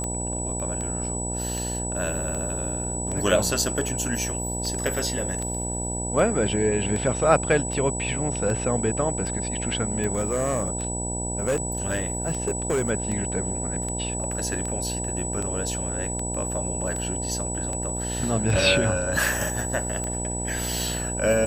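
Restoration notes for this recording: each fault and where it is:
buzz 60 Hz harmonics 16 -31 dBFS
tick 78 rpm -18 dBFS
whine 7.9 kHz -30 dBFS
10.13–12.91 s: clipped -19.5 dBFS

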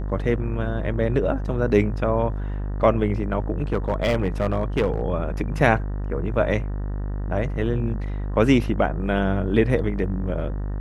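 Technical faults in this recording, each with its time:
buzz 50 Hz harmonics 38 -27 dBFS
3.62–5.01 s: clipped -15 dBFS

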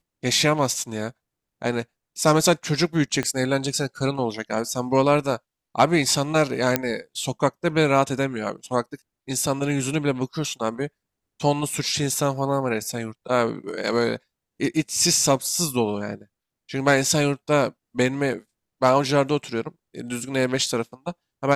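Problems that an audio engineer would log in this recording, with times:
3.23 s: pop -12 dBFS
6.76 s: pop -2 dBFS

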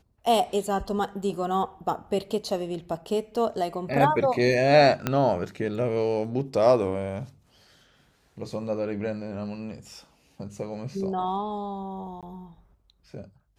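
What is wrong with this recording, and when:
5.07 s: pop -10 dBFS
12.21–12.23 s: dropout 17 ms

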